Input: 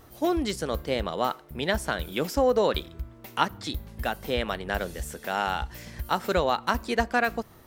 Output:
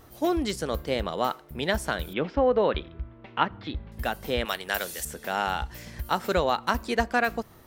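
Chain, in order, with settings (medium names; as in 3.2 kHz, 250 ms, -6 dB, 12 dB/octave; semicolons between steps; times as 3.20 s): 2.13–3.92 s: low-pass 3.2 kHz 24 dB/octave; 4.45–5.05 s: tilt EQ +3.5 dB/octave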